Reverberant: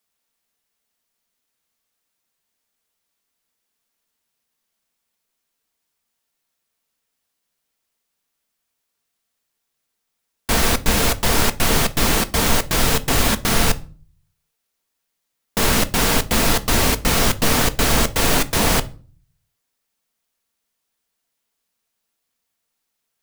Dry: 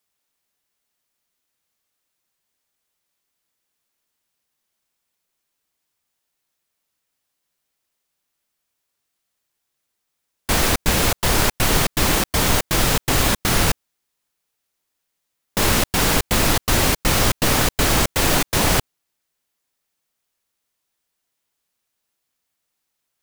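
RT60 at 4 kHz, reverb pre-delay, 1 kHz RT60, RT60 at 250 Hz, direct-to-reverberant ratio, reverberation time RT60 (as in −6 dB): 0.30 s, 4 ms, 0.40 s, 0.60 s, 11.0 dB, 0.40 s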